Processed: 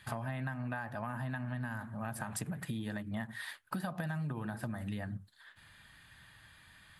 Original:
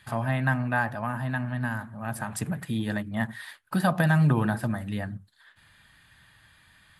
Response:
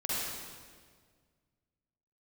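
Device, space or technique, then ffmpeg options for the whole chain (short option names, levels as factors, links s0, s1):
serial compression, leveller first: -af "acompressor=threshold=0.0355:ratio=2,acompressor=threshold=0.02:ratio=6,volume=0.891"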